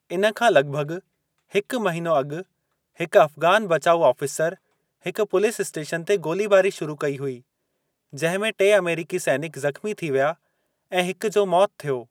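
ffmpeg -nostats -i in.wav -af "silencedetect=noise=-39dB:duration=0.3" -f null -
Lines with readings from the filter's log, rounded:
silence_start: 0.99
silence_end: 1.52 | silence_duration: 0.53
silence_start: 2.42
silence_end: 3.00 | silence_duration: 0.57
silence_start: 4.54
silence_end: 5.05 | silence_duration: 0.51
silence_start: 7.39
silence_end: 8.13 | silence_duration: 0.74
silence_start: 10.33
silence_end: 10.92 | silence_duration: 0.58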